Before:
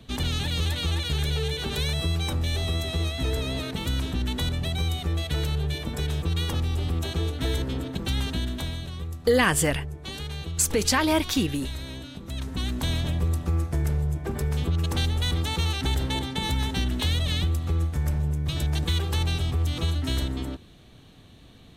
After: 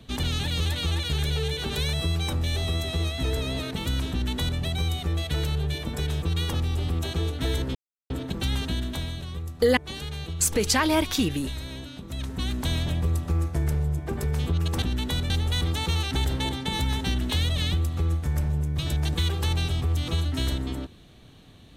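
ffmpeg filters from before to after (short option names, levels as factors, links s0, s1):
-filter_complex "[0:a]asplit=5[s0][s1][s2][s3][s4];[s0]atrim=end=7.75,asetpts=PTS-STARTPTS,afade=t=out:st=7.746:d=0.004:c=hsin,apad=pad_dur=0.35[s5];[s1]atrim=start=7.75:end=9.422,asetpts=PTS-STARTPTS,afade=t=in:d=0.004:c=hsin[s6];[s2]atrim=start=9.948:end=15.002[s7];[s3]atrim=start=4.108:end=4.592[s8];[s4]atrim=start=14.998[s9];[s5][s6]concat=n=2:v=0:a=1[s10];[s10][s7]acrossfade=d=0.004:c1=hsin:c2=hsin[s11];[s11][s8]acrossfade=d=0.004:c1=hsin:c2=hsin[s12];[s12][s9]acrossfade=d=0.004:c1=hsin:c2=hsin"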